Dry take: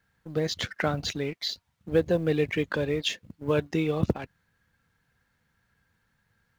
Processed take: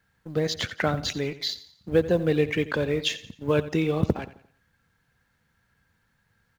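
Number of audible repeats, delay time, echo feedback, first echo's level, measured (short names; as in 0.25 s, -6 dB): 3, 87 ms, 40%, -15.5 dB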